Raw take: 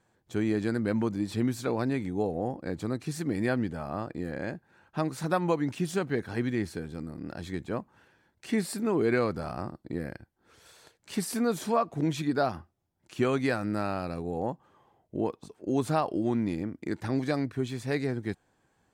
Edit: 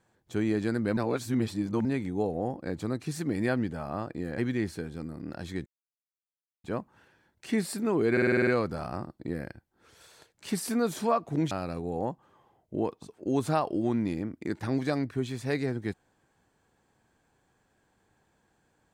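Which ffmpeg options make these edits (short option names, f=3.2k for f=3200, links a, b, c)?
-filter_complex "[0:a]asplit=13[a][b][c][d][e][f][g][h][i][j][k][l][m];[a]atrim=end=0.972[n];[b]atrim=start=0.968:end=1.852,asetpts=PTS-STARTPTS,areverse[o];[c]atrim=start=1.848:end=4.382[p];[d]atrim=start=6.358:end=7.64,asetpts=PTS-STARTPTS,afade=t=out:st=1.278:d=0.004:c=hsin,apad=pad_dur=0.98[q];[e]atrim=start=7.64:end=9.172,asetpts=PTS-STARTPTS,afade=t=in:d=0.004:c=hsin[r];[f]atrim=start=9.118:end=9.172[s];[g]atrim=start=9.118:end=9.172[t];[h]atrim=start=9.118:end=9.172[u];[i]atrim=start=9.118:end=9.172[v];[j]atrim=start=9.118:end=9.172[w];[k]atrim=start=9.118:end=9.172[x];[l]atrim=start=9.118:end=12.162[y];[m]atrim=start=13.918[z];[n][o]acrossfade=d=0.004:c1=hsin:c2=hsin[aa];[aa][p]acrossfade=d=0.004:c1=hsin:c2=hsin[ab];[q][r]concat=n=2:v=0:a=1[ac];[ab][ac]acrossfade=d=0.004:c1=hsin:c2=hsin[ad];[ad][s]acrossfade=d=0.004:c1=hsin:c2=hsin[ae];[ae][t]acrossfade=d=0.004:c1=hsin:c2=hsin[af];[af][u]acrossfade=d=0.004:c1=hsin:c2=hsin[ag];[ag][v]acrossfade=d=0.004:c1=hsin:c2=hsin[ah];[ah][w]acrossfade=d=0.004:c1=hsin:c2=hsin[ai];[ai][x]acrossfade=d=0.004:c1=hsin:c2=hsin[aj];[aj][y]acrossfade=d=0.004:c1=hsin:c2=hsin[ak];[ak][z]acrossfade=d=0.004:c1=hsin:c2=hsin"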